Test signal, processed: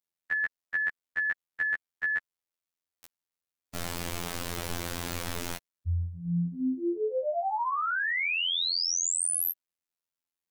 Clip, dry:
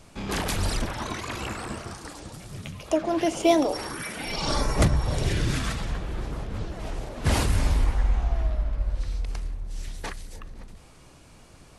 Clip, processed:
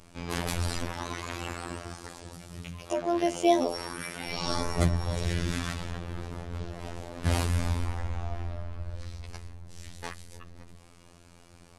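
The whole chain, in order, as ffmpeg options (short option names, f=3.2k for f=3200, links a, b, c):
-af "afftfilt=real='hypot(re,im)*cos(PI*b)':imag='0':win_size=2048:overlap=0.75,acontrast=22,volume=-5dB"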